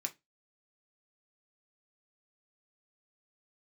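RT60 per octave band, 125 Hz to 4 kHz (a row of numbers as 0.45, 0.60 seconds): 0.25, 0.25, 0.20, 0.20, 0.20, 0.20 seconds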